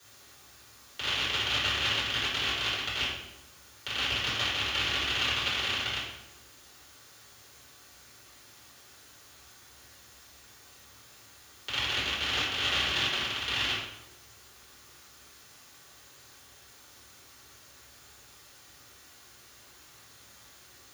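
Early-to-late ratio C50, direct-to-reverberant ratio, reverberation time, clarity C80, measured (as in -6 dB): 1.0 dB, -12.0 dB, 0.90 s, 4.0 dB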